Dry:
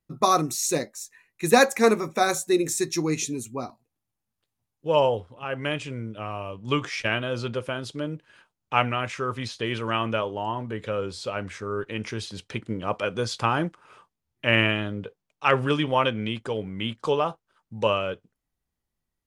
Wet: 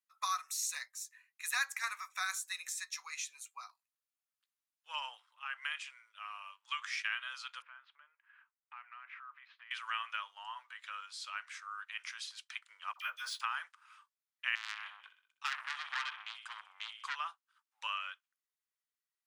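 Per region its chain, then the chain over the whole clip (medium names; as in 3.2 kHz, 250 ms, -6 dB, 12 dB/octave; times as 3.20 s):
2.57–3.51 s: peaking EQ 12 kHz -6 dB 2.3 oct + three bands compressed up and down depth 40%
7.62–9.71 s: low-pass 2.2 kHz 24 dB/octave + compression 5:1, threshold -37 dBFS
12.93–13.41 s: doubling 13 ms -8 dB + phase dispersion lows, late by 68 ms, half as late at 1 kHz + decimation joined by straight lines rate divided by 3×
14.55–17.16 s: de-esser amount 75% + feedback delay 64 ms, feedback 52%, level -11 dB + transformer saturation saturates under 3.7 kHz
whole clip: steep high-pass 1.1 kHz 36 dB/octave; dynamic bell 1.8 kHz, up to +4 dB, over -40 dBFS, Q 2.7; compression 2:1, threshold -29 dBFS; trim -6.5 dB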